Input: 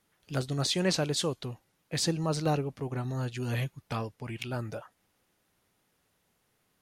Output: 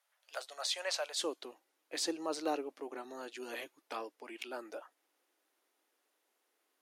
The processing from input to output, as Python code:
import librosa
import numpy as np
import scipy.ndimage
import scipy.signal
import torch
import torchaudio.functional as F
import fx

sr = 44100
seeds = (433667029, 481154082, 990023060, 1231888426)

y = fx.ellip_highpass(x, sr, hz=fx.steps((0.0, 580.0), (1.18, 300.0)), order=4, stop_db=80)
y = y * librosa.db_to_amplitude(-4.5)